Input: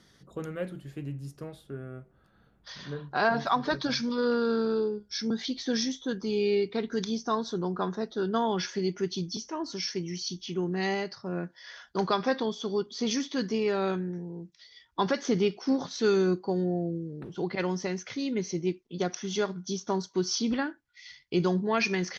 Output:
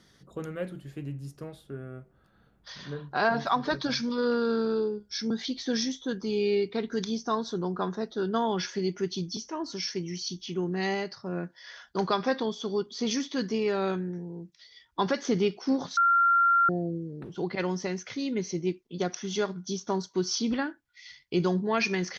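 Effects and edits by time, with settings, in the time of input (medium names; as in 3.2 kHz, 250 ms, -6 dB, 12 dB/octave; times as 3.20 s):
15.97–16.69 s: bleep 1.38 kHz -18.5 dBFS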